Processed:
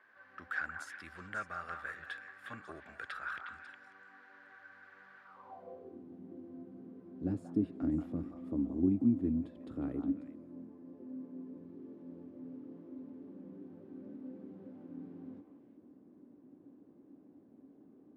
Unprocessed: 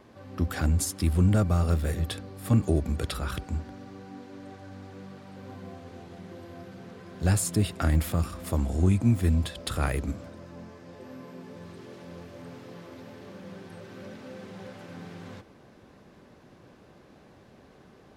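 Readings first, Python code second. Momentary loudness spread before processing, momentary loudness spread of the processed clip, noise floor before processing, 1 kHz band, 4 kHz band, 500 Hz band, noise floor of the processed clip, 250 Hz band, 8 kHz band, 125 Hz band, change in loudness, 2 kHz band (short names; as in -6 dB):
21 LU, 24 LU, -55 dBFS, -8.5 dB, under -15 dB, -12.0 dB, -61 dBFS, -5.0 dB, under -25 dB, -20.5 dB, -13.0 dB, -2.0 dB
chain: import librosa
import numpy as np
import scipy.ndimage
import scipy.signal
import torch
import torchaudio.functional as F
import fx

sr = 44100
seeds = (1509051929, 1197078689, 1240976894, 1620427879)

y = fx.echo_stepped(x, sr, ms=181, hz=970.0, octaves=1.4, feedback_pct=70, wet_db=-2.5)
y = fx.filter_sweep_bandpass(y, sr, from_hz=1600.0, to_hz=280.0, start_s=5.22, end_s=6.0, q=6.4)
y = y * 10.0 ** (5.0 / 20.0)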